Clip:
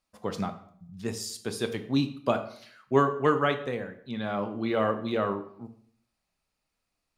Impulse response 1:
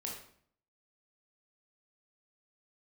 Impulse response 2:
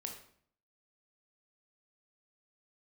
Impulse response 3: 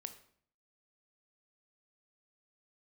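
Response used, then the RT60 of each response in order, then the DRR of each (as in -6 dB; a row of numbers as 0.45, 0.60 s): 3; 0.60, 0.60, 0.60 s; -2.0, 2.0, 8.5 dB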